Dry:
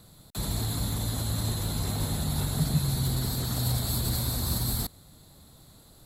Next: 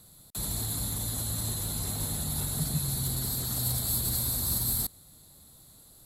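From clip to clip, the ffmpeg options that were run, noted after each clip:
ffmpeg -i in.wav -af "equalizer=frequency=11000:width_type=o:width=1.5:gain=11,volume=-5.5dB" out.wav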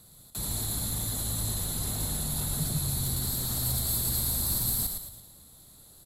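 ffmpeg -i in.wav -filter_complex "[0:a]asoftclip=type=tanh:threshold=-18dB,asplit=2[link_01][link_02];[link_02]asplit=5[link_03][link_04][link_05][link_06][link_07];[link_03]adelay=111,afreqshift=-53,volume=-5.5dB[link_08];[link_04]adelay=222,afreqshift=-106,volume=-12.4dB[link_09];[link_05]adelay=333,afreqshift=-159,volume=-19.4dB[link_10];[link_06]adelay=444,afreqshift=-212,volume=-26.3dB[link_11];[link_07]adelay=555,afreqshift=-265,volume=-33.2dB[link_12];[link_08][link_09][link_10][link_11][link_12]amix=inputs=5:normalize=0[link_13];[link_01][link_13]amix=inputs=2:normalize=0" out.wav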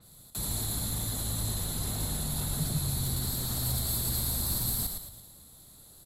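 ffmpeg -i in.wav -af "adynamicequalizer=threshold=0.00447:dfrequency=5300:dqfactor=0.7:tfrequency=5300:tqfactor=0.7:attack=5:release=100:ratio=0.375:range=1.5:mode=cutabove:tftype=highshelf" out.wav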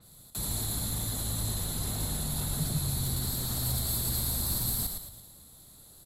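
ffmpeg -i in.wav -af anull out.wav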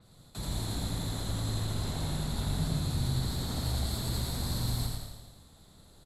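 ffmpeg -i in.wav -af "adynamicsmooth=sensitivity=1.5:basefreq=5300,aecho=1:1:84|168|252|336|420|504|588:0.631|0.347|0.191|0.105|0.0577|0.0318|0.0175" out.wav

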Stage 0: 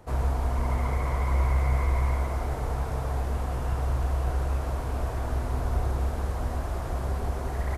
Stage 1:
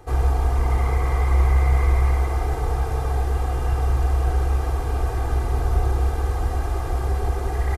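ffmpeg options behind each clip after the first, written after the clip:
ffmpeg -i in.wav -af "aecho=1:1:2.5:0.78,volume=3dB" out.wav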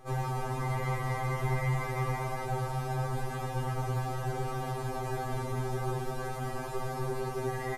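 ffmpeg -i in.wav -af "afftfilt=real='re*2.45*eq(mod(b,6),0)':imag='im*2.45*eq(mod(b,6),0)':win_size=2048:overlap=0.75,volume=-2.5dB" out.wav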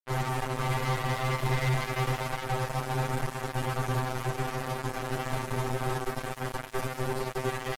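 ffmpeg -i in.wav -af "acrusher=bits=4:mix=0:aa=0.5,volume=2dB" out.wav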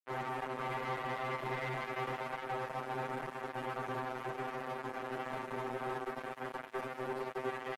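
ffmpeg -i in.wav -filter_complex "[0:a]acrossover=split=190 3000:gain=0.0794 1 0.2[link_01][link_02][link_03];[link_01][link_02][link_03]amix=inputs=3:normalize=0,volume=-5.5dB" out.wav

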